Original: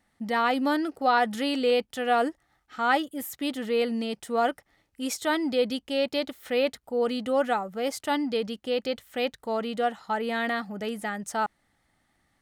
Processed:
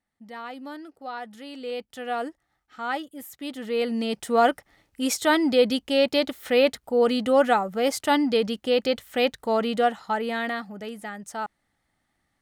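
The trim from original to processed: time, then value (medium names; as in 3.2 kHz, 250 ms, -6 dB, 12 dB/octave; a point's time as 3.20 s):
1.46 s -13 dB
1.95 s -5.5 dB
3.39 s -5.5 dB
4.21 s +5.5 dB
9.74 s +5.5 dB
10.90 s -4 dB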